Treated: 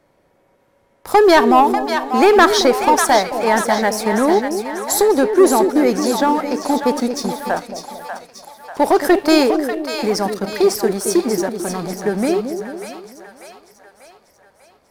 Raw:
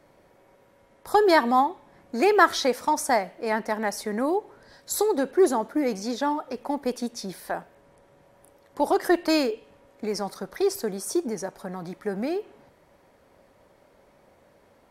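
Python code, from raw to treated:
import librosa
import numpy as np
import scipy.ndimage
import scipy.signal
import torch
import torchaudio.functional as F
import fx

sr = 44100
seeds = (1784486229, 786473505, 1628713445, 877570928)

p1 = fx.leveller(x, sr, passes=2)
p2 = p1 + fx.echo_split(p1, sr, split_hz=660.0, low_ms=222, high_ms=592, feedback_pct=52, wet_db=-7.0, dry=0)
y = p2 * librosa.db_to_amplitude(2.5)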